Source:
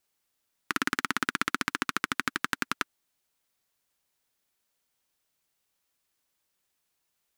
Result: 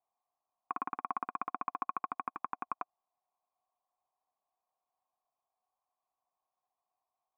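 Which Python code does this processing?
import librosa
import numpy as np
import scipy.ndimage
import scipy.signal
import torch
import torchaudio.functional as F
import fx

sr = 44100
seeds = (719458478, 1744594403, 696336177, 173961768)

y = fx.formant_cascade(x, sr, vowel='a')
y = y * 10.0 ** (11.0 / 20.0)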